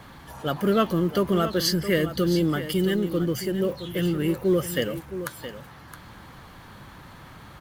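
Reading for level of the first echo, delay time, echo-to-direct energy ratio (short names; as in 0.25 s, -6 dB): -11.5 dB, 0.668 s, -11.5 dB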